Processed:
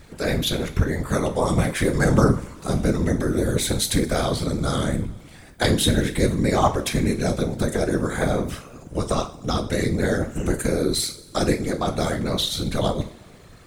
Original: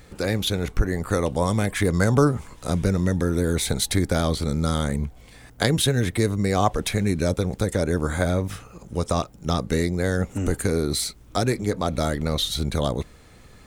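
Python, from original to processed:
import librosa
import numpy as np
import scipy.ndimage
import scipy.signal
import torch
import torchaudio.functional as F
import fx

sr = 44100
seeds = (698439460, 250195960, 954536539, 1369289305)

y = fx.rev_double_slope(x, sr, seeds[0], early_s=0.35, late_s=1.7, knee_db=-18, drr_db=4.5)
y = fx.whisperise(y, sr, seeds[1])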